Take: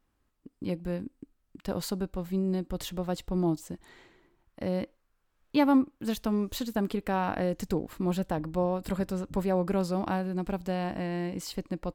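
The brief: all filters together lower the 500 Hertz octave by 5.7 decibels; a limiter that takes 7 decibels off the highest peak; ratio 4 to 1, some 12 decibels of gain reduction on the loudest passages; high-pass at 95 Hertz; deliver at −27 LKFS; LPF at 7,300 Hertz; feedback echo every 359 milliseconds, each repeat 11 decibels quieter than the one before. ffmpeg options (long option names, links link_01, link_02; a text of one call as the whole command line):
ffmpeg -i in.wav -af "highpass=95,lowpass=7300,equalizer=frequency=500:width_type=o:gain=-7.5,acompressor=threshold=-35dB:ratio=4,alimiter=level_in=6.5dB:limit=-24dB:level=0:latency=1,volume=-6.5dB,aecho=1:1:359|718|1077:0.282|0.0789|0.0221,volume=14dB" out.wav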